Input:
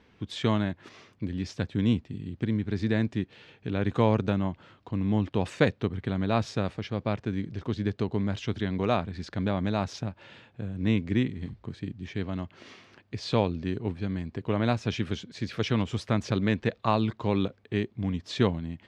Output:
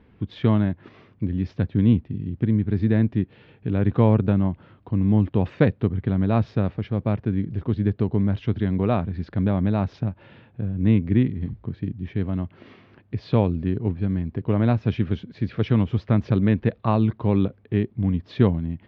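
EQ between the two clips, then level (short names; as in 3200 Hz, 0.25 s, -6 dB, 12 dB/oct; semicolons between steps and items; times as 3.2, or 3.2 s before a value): Gaussian blur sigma 2.4 samples; low shelf 340 Hz +9.5 dB; 0.0 dB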